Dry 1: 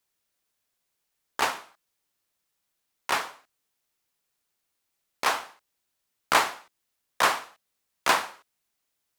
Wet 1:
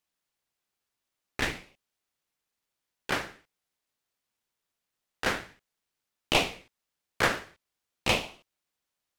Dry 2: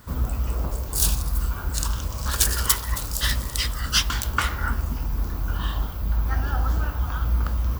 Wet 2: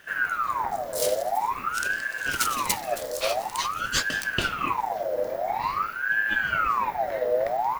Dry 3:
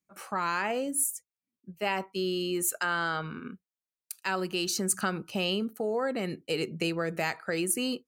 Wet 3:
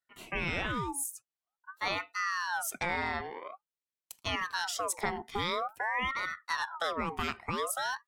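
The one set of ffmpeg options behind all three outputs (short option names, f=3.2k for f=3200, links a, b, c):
-af "highshelf=f=7k:g=-6.5,aeval=exprs='val(0)*sin(2*PI*1100*n/s+1100*0.5/0.48*sin(2*PI*0.48*n/s))':c=same"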